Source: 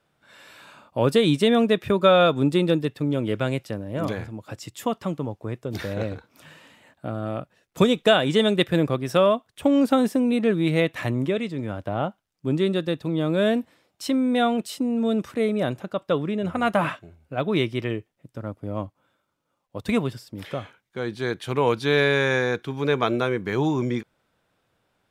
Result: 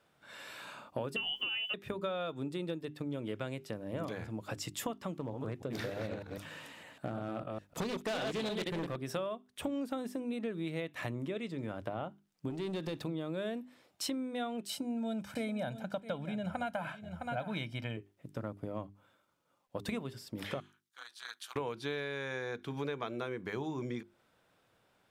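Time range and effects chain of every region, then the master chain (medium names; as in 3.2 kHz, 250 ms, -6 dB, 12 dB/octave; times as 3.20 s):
1.16–1.74 s: frequency inversion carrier 3.2 kHz + word length cut 10-bit, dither triangular
5.17–8.96 s: chunks repeated in reverse 151 ms, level -5 dB + overload inside the chain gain 19 dB + loudspeaker Doppler distortion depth 0.2 ms
12.50–13.04 s: compression 3:1, threshold -31 dBFS + waveshaping leveller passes 2
14.69–17.97 s: comb 1.3 ms, depth 81% + delay 661 ms -15.5 dB
20.60–21.56 s: high-pass 1.2 kHz 24 dB/octave + peaking EQ 2.1 kHz -14 dB 1.1 oct + AM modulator 220 Hz, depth 80%
whole clip: bass shelf 82 Hz -6.5 dB; compression 10:1, threshold -34 dBFS; hum notches 50/100/150/200/250/300/350/400 Hz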